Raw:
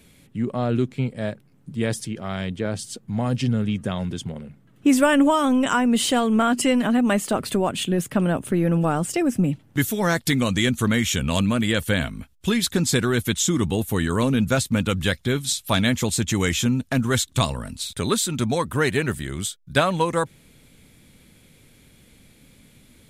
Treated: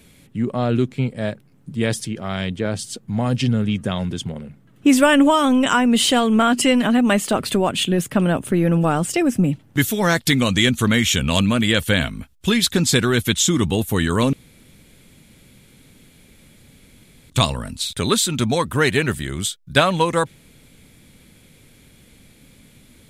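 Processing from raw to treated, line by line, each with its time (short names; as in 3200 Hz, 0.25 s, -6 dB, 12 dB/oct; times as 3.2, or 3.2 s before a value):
14.33–17.3 room tone
whole clip: dynamic EQ 3200 Hz, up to +4 dB, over -38 dBFS, Q 1; gain +3 dB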